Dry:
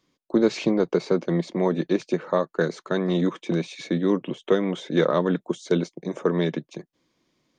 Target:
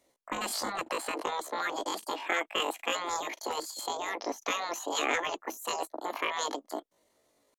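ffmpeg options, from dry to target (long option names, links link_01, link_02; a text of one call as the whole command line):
ffmpeg -i in.wav -af "asetrate=83250,aresample=44100,atempo=0.529732,afftfilt=real='re*lt(hypot(re,im),0.224)':imag='im*lt(hypot(re,im),0.224)':win_size=1024:overlap=0.75" out.wav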